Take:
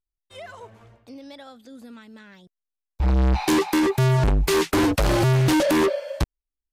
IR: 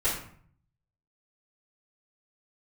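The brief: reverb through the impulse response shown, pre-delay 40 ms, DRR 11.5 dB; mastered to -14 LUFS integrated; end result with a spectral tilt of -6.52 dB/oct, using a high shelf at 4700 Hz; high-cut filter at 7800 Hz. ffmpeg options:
-filter_complex "[0:a]lowpass=7.8k,highshelf=f=4.7k:g=-8,asplit=2[a][b];[1:a]atrim=start_sample=2205,adelay=40[c];[b][c]afir=irnorm=-1:irlink=0,volume=-21.5dB[d];[a][d]amix=inputs=2:normalize=0,volume=6dB"

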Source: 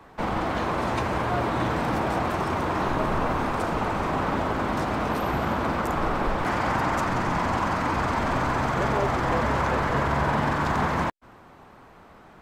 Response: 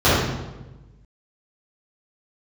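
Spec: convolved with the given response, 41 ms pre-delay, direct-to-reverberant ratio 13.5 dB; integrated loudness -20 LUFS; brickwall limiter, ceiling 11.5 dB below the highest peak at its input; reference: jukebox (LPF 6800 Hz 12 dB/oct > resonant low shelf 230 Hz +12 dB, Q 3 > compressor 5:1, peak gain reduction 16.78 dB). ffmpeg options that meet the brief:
-filter_complex "[0:a]alimiter=limit=-22.5dB:level=0:latency=1,asplit=2[a][b];[1:a]atrim=start_sample=2205,adelay=41[c];[b][c]afir=irnorm=-1:irlink=0,volume=-38.5dB[d];[a][d]amix=inputs=2:normalize=0,lowpass=6.8k,lowshelf=f=230:t=q:w=3:g=12,acompressor=threshold=-30dB:ratio=5,volume=13dB"

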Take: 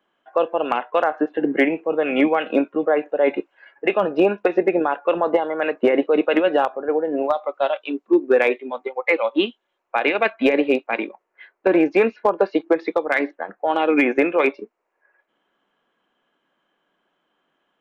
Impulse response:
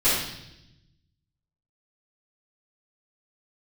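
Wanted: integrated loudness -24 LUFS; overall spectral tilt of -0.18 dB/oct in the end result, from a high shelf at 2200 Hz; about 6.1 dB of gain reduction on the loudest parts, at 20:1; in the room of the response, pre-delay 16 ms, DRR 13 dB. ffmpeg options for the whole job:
-filter_complex "[0:a]highshelf=f=2.2k:g=-7,acompressor=threshold=-18dB:ratio=20,asplit=2[a][b];[1:a]atrim=start_sample=2205,adelay=16[c];[b][c]afir=irnorm=-1:irlink=0,volume=-29dB[d];[a][d]amix=inputs=2:normalize=0,volume=1dB"

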